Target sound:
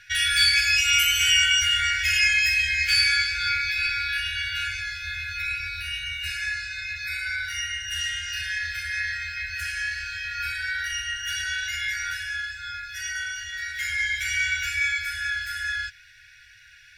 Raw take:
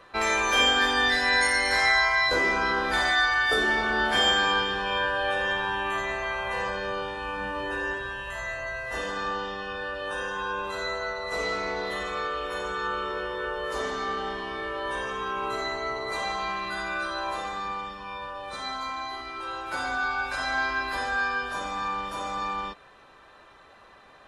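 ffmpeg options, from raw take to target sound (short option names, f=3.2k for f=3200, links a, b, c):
-af "flanger=delay=3.6:depth=4.2:regen=-69:speed=1.6:shape=triangular,asetrate=63063,aresample=44100,afftfilt=real='re*(1-between(b*sr/4096,120,1400))':imag='im*(1-between(b*sr/4096,120,1400))':win_size=4096:overlap=0.75,volume=7.5dB"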